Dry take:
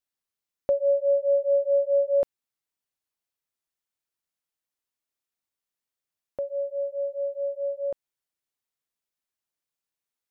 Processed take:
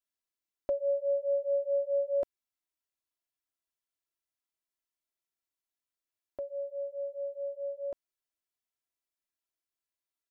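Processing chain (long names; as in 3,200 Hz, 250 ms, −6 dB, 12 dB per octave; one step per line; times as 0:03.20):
comb filter 3 ms, depth 71%
level −7 dB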